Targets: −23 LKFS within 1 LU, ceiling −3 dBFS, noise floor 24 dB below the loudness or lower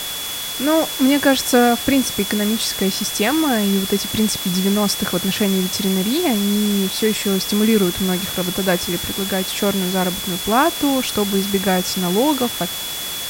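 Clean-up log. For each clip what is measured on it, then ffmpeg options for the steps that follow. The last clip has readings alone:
interfering tone 3,400 Hz; level of the tone −28 dBFS; background noise floor −27 dBFS; target noise floor −42 dBFS; integrated loudness −18.0 LKFS; sample peak −2.0 dBFS; target loudness −23.0 LKFS
→ -af "bandreject=frequency=3400:width=30"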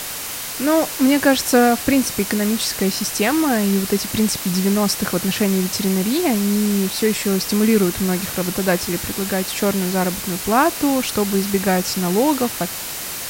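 interfering tone none found; background noise floor −29 dBFS; target noise floor −43 dBFS
→ -af "afftdn=noise_reduction=14:noise_floor=-29"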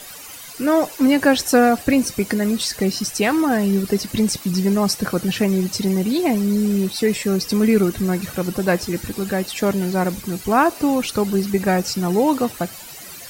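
background noise floor −37 dBFS; target noise floor −44 dBFS
→ -af "afftdn=noise_reduction=7:noise_floor=-37"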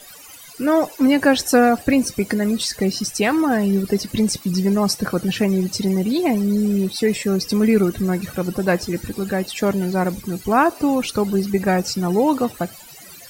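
background noise floor −41 dBFS; target noise floor −44 dBFS
→ -af "afftdn=noise_reduction=6:noise_floor=-41"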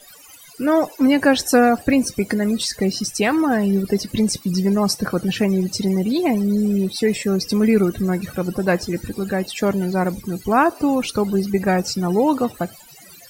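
background noise floor −44 dBFS; integrated loudness −19.5 LKFS; sample peak −2.5 dBFS; target loudness −23.0 LKFS
→ -af "volume=-3.5dB"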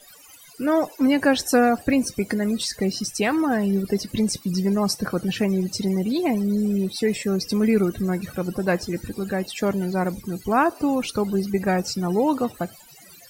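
integrated loudness −23.0 LKFS; sample peak −6.0 dBFS; background noise floor −48 dBFS

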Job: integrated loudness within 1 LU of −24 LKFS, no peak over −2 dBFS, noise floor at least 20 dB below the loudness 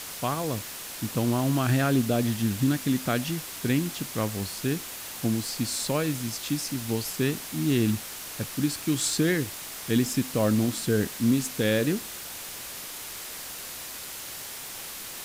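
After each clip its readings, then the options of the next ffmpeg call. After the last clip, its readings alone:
background noise floor −39 dBFS; target noise floor −48 dBFS; integrated loudness −28.0 LKFS; sample peak −13.0 dBFS; target loudness −24.0 LKFS
→ -af "afftdn=noise_reduction=9:noise_floor=-39"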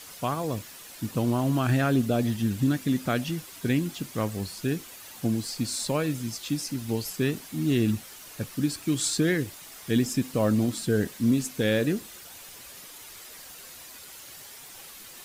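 background noise floor −46 dBFS; target noise floor −48 dBFS
→ -af "afftdn=noise_reduction=6:noise_floor=-46"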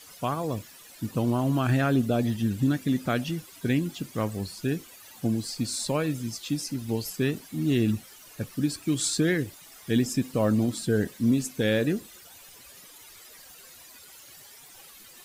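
background noise floor −50 dBFS; integrated loudness −27.5 LKFS; sample peak −14.0 dBFS; target loudness −24.0 LKFS
→ -af "volume=3.5dB"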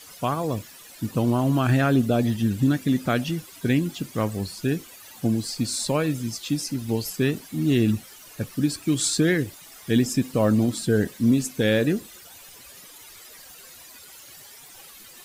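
integrated loudness −24.0 LKFS; sample peak −10.5 dBFS; background noise floor −46 dBFS

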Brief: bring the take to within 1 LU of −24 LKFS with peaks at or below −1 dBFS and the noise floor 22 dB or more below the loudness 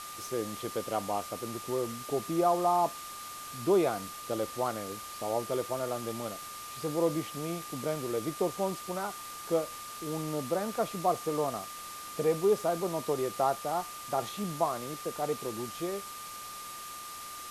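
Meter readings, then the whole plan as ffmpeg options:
interfering tone 1,200 Hz; level of the tone −43 dBFS; background noise floor −43 dBFS; target noise floor −55 dBFS; integrated loudness −33.0 LKFS; sample peak −14.5 dBFS; target loudness −24.0 LKFS
→ -af "bandreject=frequency=1200:width=30"
-af "afftdn=noise_reduction=12:noise_floor=-43"
-af "volume=9dB"

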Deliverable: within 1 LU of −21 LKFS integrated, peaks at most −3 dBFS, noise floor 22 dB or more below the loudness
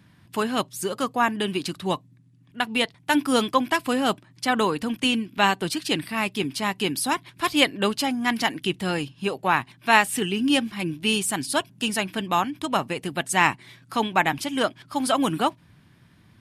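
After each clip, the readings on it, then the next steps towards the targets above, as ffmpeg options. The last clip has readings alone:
integrated loudness −24.5 LKFS; sample peak −1.5 dBFS; target loudness −21.0 LKFS
→ -af "volume=3.5dB,alimiter=limit=-3dB:level=0:latency=1"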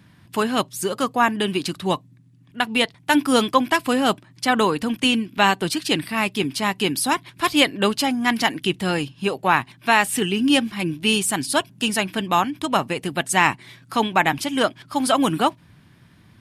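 integrated loudness −21.0 LKFS; sample peak −3.0 dBFS; background noise floor −52 dBFS

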